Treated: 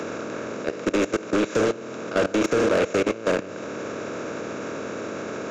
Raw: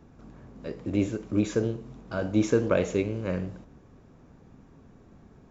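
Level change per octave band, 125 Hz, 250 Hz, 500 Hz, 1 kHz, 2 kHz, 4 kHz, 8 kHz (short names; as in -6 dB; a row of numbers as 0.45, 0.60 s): -4.5 dB, +2.5 dB, +6.5 dB, +12.0 dB, +10.5 dB, +11.0 dB, n/a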